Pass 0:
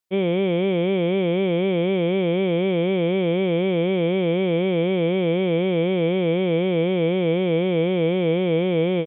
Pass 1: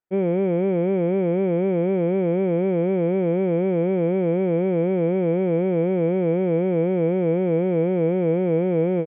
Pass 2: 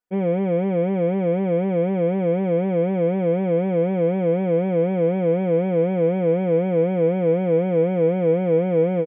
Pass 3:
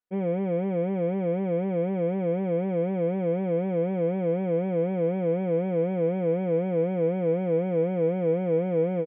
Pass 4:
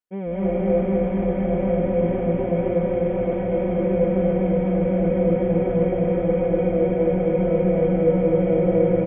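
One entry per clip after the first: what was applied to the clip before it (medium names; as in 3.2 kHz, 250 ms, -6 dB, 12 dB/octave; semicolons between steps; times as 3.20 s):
low-pass 1.8 kHz 24 dB/octave; band-stop 1.1 kHz, Q 6.9
comb 4.1 ms, depth 64%
distance through air 110 m; trim -5.5 dB
frequency-shifting echo 140 ms, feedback 64%, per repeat -150 Hz, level -13.5 dB; reverberation RT60 1.7 s, pre-delay 151 ms, DRR -6 dB; trim -1.5 dB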